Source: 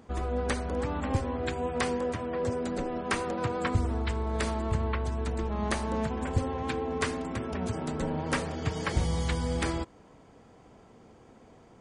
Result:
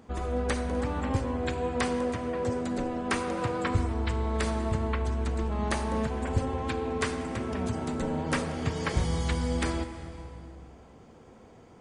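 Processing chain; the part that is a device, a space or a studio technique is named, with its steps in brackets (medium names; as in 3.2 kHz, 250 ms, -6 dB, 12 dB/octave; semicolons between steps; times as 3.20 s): compressed reverb return (on a send at -3.5 dB: reverberation RT60 2.0 s, pre-delay 33 ms + compression, threshold -32 dBFS, peak gain reduction 9 dB)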